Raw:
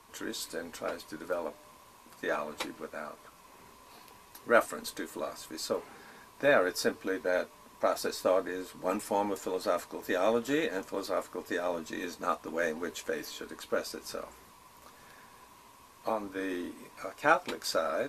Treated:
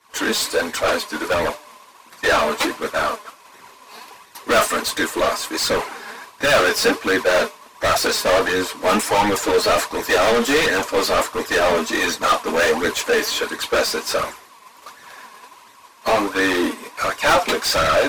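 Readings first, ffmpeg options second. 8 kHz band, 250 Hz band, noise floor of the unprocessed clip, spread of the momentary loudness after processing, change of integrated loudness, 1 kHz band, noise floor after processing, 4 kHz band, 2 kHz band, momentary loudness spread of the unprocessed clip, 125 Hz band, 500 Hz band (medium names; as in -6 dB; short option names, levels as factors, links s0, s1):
+17.5 dB, +12.0 dB, -57 dBFS, 7 LU, +14.0 dB, +14.5 dB, -48 dBFS, +19.5 dB, +15.5 dB, 15 LU, +16.0 dB, +12.0 dB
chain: -filter_complex "[0:a]asplit=2[s0][s1];[s1]highpass=f=720:p=1,volume=70.8,asoftclip=type=tanh:threshold=0.376[s2];[s0][s2]amix=inputs=2:normalize=0,lowpass=f=6200:p=1,volume=0.501,agate=range=0.0224:threshold=0.178:ratio=3:detection=peak,flanger=delay=0.5:depth=4.3:regen=38:speed=1.4:shape=sinusoidal,volume=1.78"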